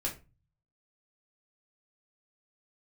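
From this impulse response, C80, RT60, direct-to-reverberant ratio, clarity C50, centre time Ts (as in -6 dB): 18.5 dB, 0.30 s, -3.0 dB, 11.5 dB, 18 ms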